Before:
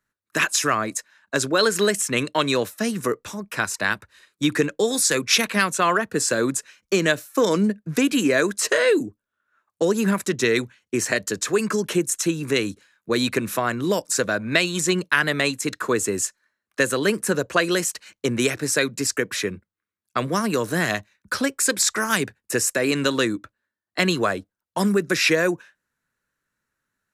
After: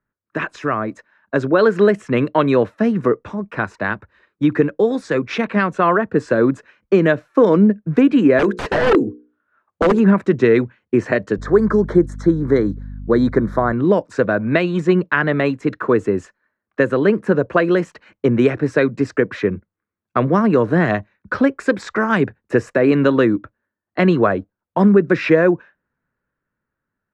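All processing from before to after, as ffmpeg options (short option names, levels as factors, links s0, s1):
-filter_complex "[0:a]asettb=1/sr,asplit=3[s0][s1][s2];[s0]atrim=end=8.394[s3];[s1]atrim=start=8.39:end=10,asetpts=PTS-STARTPTS,afade=t=in:d=0.004:c=qsin,afade=t=out:st=1.606:d=0.004:c=qsin,highshelf=f=4900:g=10.5,bandreject=f=60:t=h:w=6,bandreject=f=120:t=h:w=6,bandreject=f=180:t=h:w=6,bandreject=f=240:t=h:w=6,bandreject=f=300:t=h:w=6,bandreject=f=360:t=h:w=6,bandreject=f=420:t=h:w=6,bandreject=f=480:t=h:w=6,aeval=exprs='(mod(4.22*val(0)+1,2)-1)/4.22':c=same[s4];[s2]atrim=start=9.996[s5];[s3][s4]acrossfade=d=0.004:c1=hsin:c2=qsin[s6];[s6][s5]acrossfade=d=0.004:c1=qsin:c2=hsin,asettb=1/sr,asplit=3[s7][s8][s9];[s7]atrim=end=11.384[s10];[s8]atrim=start=11.38:end=13.73,asetpts=PTS-STARTPTS,afade=t=in:d=0.004:c=qsin,afade=t=out:st=2.346:d=0.004:c=qsin,aeval=exprs='val(0)+0.0126*(sin(2*PI*50*n/s)+sin(2*PI*2*50*n/s)/2+sin(2*PI*3*50*n/s)/3+sin(2*PI*4*50*n/s)/4+sin(2*PI*5*50*n/s)/5)':c=same,asuperstop=centerf=2700:order=4:qfactor=1.7[s11];[s9]atrim=start=13.726[s12];[s10][s11]acrossfade=d=0.004:c1=hsin:c2=qsin[s13];[s13][s12]acrossfade=d=0.004:c1=qsin:c2=hsin,lowpass=2100,tiltshelf=f=1400:g=5,dynaudnorm=f=110:g=21:m=3.76,volume=0.891"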